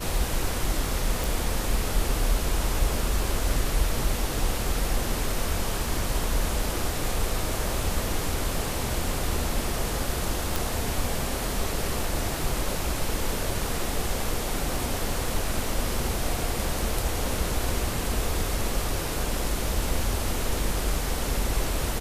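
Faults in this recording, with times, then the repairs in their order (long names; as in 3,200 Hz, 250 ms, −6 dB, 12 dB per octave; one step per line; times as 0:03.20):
0:01.24: click
0:10.56: click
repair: click removal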